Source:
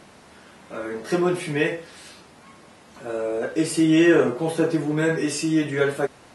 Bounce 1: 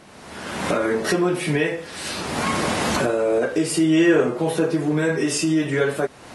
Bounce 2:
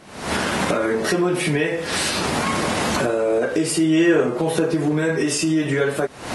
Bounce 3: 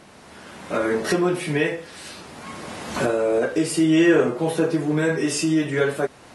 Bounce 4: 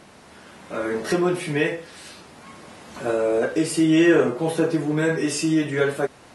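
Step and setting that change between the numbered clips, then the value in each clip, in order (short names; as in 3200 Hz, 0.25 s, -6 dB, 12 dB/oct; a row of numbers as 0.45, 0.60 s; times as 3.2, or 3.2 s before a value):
recorder AGC, rising by: 35, 85, 14, 5.7 dB/s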